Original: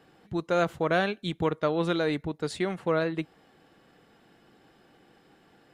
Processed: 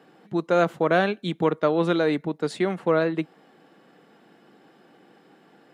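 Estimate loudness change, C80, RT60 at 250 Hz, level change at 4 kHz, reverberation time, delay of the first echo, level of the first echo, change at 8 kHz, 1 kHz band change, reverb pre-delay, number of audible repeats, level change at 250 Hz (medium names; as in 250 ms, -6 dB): +4.5 dB, no reverb, no reverb, +1.0 dB, no reverb, no echo, no echo, no reading, +4.5 dB, no reverb, no echo, +5.0 dB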